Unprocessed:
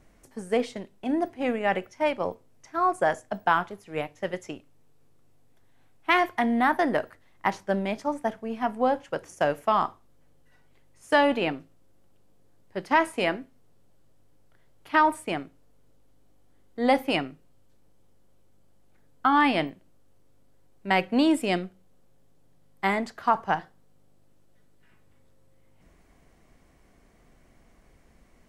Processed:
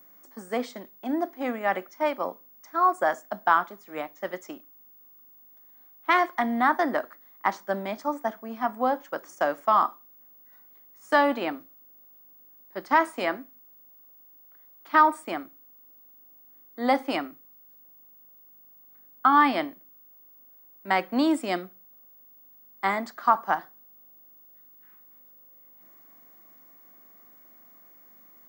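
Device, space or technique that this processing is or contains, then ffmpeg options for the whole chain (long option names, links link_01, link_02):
old television with a line whistle: -af "highpass=frequency=230:width=0.5412,highpass=frequency=230:width=1.3066,equalizer=frequency=440:width_type=q:width=4:gain=-8,equalizer=frequency=1200:width_type=q:width=4:gain=6,equalizer=frequency=2700:width_type=q:width=4:gain=-9,lowpass=frequency=8800:width=0.5412,lowpass=frequency=8800:width=1.3066,aeval=exprs='val(0)+0.00282*sin(2*PI*15625*n/s)':channel_layout=same"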